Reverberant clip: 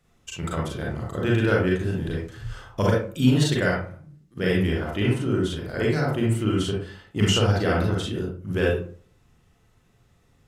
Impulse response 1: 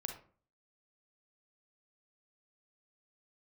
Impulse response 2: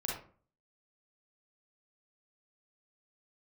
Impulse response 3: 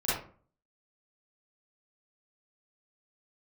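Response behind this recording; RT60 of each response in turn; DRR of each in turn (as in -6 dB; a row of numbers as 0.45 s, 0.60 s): 2; 0.45 s, 0.45 s, 0.45 s; 3.5 dB, -4.0 dB, -11.5 dB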